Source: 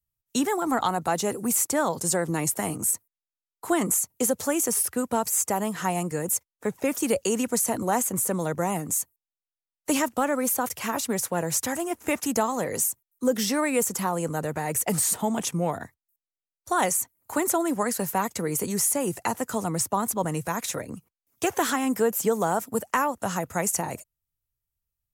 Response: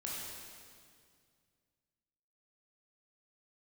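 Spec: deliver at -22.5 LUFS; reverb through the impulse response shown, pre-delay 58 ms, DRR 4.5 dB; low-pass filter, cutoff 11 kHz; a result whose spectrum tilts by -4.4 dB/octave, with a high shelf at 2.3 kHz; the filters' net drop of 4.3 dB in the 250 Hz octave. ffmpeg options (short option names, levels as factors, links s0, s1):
-filter_complex "[0:a]lowpass=11000,equalizer=f=250:t=o:g=-5.5,highshelf=f=2300:g=-8,asplit=2[s0][s1];[1:a]atrim=start_sample=2205,adelay=58[s2];[s1][s2]afir=irnorm=-1:irlink=0,volume=0.531[s3];[s0][s3]amix=inputs=2:normalize=0,volume=2"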